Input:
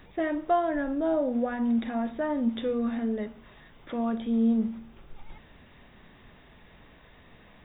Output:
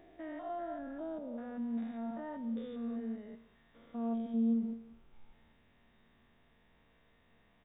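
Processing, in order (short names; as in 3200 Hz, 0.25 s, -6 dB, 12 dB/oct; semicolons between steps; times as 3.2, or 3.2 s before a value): stepped spectrum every 0.2 s; resonator 230 Hz, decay 0.5 s, harmonics all, mix 70%; speakerphone echo 0.17 s, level -19 dB; gain -4 dB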